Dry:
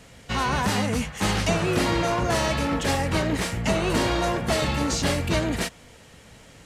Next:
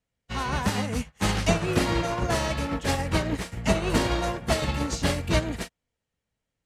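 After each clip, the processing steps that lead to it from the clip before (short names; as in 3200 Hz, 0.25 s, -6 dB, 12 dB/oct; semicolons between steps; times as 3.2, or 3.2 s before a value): low shelf 70 Hz +6.5 dB; upward expander 2.5:1, over -44 dBFS; gain +2 dB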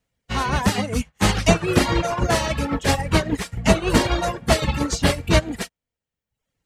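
reverb removal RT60 0.84 s; gain +7 dB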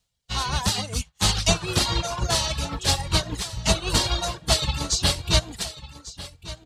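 echo 1.147 s -16.5 dB; reverse; upward compressor, threshold -32 dBFS; reverse; graphic EQ 250/500/2000/4000/8000 Hz -10/-6/-8/+9/+4 dB; gain -2 dB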